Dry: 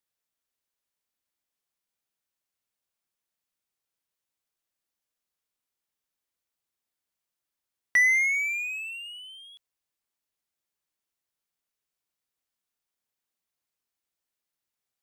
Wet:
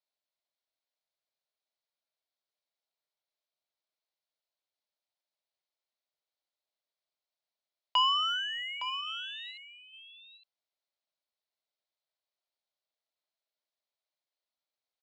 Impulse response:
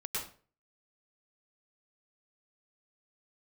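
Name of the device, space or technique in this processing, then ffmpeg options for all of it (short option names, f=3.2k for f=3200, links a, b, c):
voice changer toy: -filter_complex "[0:a]asplit=3[a][b][c];[a]afade=t=out:st=9.06:d=0.02[d];[b]tiltshelf=f=970:g=-7,afade=t=in:st=9.06:d=0.02,afade=t=out:st=9.5:d=0.02[e];[c]afade=t=in:st=9.5:d=0.02[f];[d][e][f]amix=inputs=3:normalize=0,aeval=exprs='val(0)*sin(2*PI*600*n/s+600*0.6/0.5*sin(2*PI*0.5*n/s))':c=same,highpass=500,equalizer=f=620:t=q:w=4:g=8,equalizer=f=1.2k:t=q:w=4:g=-4,equalizer=f=1.7k:t=q:w=4:g=-6,equalizer=f=2.7k:t=q:w=4:g=-4,equalizer=f=4.1k:t=q:w=4:g=5,lowpass=f=4.9k:w=0.5412,lowpass=f=4.9k:w=1.3066,aecho=1:1:862:0.299"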